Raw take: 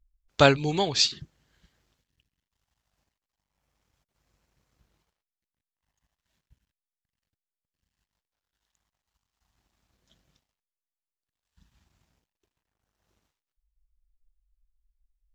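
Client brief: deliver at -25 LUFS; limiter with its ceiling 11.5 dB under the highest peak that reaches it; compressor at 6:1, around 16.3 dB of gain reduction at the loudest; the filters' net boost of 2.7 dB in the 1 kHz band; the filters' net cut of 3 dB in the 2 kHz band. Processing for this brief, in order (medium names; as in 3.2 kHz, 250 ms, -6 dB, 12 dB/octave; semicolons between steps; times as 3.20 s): peaking EQ 1 kHz +6 dB; peaking EQ 2 kHz -7.5 dB; compression 6:1, threshold -29 dBFS; trim +12 dB; peak limiter -12 dBFS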